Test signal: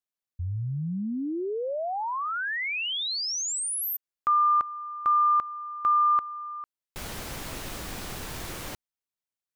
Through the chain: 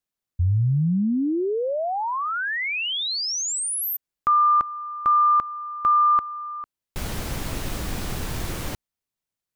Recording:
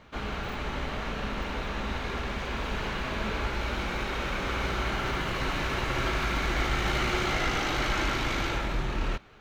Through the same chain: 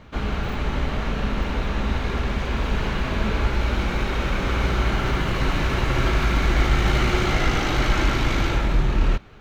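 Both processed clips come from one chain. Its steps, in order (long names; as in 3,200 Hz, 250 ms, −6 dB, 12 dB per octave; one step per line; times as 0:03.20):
low-shelf EQ 290 Hz +8 dB
level +3.5 dB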